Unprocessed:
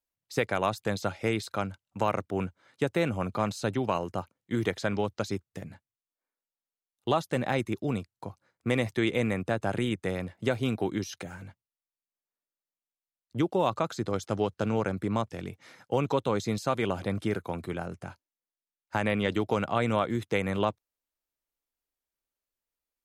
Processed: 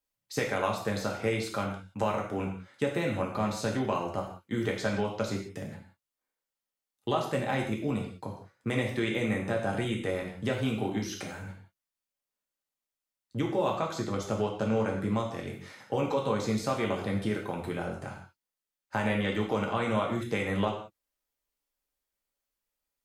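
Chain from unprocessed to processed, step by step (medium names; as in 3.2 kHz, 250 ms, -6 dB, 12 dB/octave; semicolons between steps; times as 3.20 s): compression 1.5:1, threshold -35 dBFS, peak gain reduction 5.5 dB; gated-style reverb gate 210 ms falling, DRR -1 dB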